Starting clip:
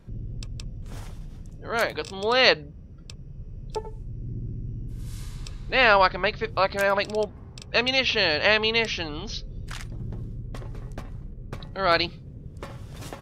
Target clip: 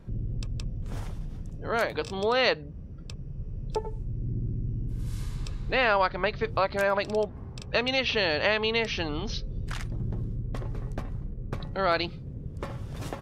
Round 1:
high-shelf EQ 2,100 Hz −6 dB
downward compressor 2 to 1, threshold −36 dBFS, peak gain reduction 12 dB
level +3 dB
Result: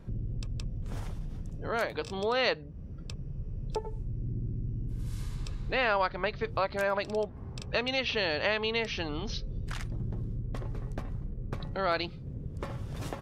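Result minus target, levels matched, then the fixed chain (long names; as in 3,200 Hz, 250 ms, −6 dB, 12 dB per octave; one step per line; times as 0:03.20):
downward compressor: peak gain reduction +4 dB
high-shelf EQ 2,100 Hz −6 dB
downward compressor 2 to 1, threshold −28 dBFS, peak gain reduction 8 dB
level +3 dB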